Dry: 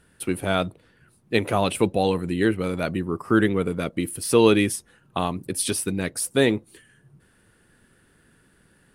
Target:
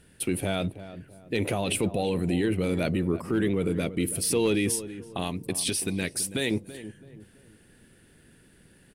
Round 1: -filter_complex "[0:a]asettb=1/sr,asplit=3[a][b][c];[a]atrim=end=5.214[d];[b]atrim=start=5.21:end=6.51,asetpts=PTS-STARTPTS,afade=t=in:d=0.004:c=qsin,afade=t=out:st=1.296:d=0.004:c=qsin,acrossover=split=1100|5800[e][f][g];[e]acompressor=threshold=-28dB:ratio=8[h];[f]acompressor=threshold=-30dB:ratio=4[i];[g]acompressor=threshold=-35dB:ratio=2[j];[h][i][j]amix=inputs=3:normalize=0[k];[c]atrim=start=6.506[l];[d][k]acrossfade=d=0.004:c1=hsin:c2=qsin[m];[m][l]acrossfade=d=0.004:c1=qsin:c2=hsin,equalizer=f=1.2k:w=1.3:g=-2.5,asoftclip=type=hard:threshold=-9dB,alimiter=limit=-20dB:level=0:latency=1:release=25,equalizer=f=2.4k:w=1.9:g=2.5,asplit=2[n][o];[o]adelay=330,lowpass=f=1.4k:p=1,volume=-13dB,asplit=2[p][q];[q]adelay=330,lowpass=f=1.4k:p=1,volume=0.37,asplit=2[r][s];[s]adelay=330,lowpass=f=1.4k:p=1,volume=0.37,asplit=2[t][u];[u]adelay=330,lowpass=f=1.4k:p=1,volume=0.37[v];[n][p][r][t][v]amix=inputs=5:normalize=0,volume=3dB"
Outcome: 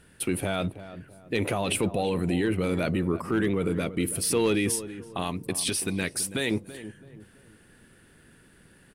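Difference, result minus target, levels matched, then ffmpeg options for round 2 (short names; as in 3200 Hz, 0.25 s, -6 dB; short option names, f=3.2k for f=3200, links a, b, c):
1000 Hz band +2.5 dB
-filter_complex "[0:a]asettb=1/sr,asplit=3[a][b][c];[a]atrim=end=5.214[d];[b]atrim=start=5.21:end=6.51,asetpts=PTS-STARTPTS,afade=t=in:d=0.004:c=qsin,afade=t=out:st=1.296:d=0.004:c=qsin,acrossover=split=1100|5800[e][f][g];[e]acompressor=threshold=-28dB:ratio=8[h];[f]acompressor=threshold=-30dB:ratio=4[i];[g]acompressor=threshold=-35dB:ratio=2[j];[h][i][j]amix=inputs=3:normalize=0[k];[c]atrim=start=6.506[l];[d][k]acrossfade=d=0.004:c1=hsin:c2=qsin[m];[m][l]acrossfade=d=0.004:c1=qsin:c2=hsin,equalizer=f=1.2k:w=1.3:g=-9,asoftclip=type=hard:threshold=-9dB,alimiter=limit=-20dB:level=0:latency=1:release=25,equalizer=f=2.4k:w=1.9:g=2.5,asplit=2[n][o];[o]adelay=330,lowpass=f=1.4k:p=1,volume=-13dB,asplit=2[p][q];[q]adelay=330,lowpass=f=1.4k:p=1,volume=0.37,asplit=2[r][s];[s]adelay=330,lowpass=f=1.4k:p=1,volume=0.37,asplit=2[t][u];[u]adelay=330,lowpass=f=1.4k:p=1,volume=0.37[v];[n][p][r][t][v]amix=inputs=5:normalize=0,volume=3dB"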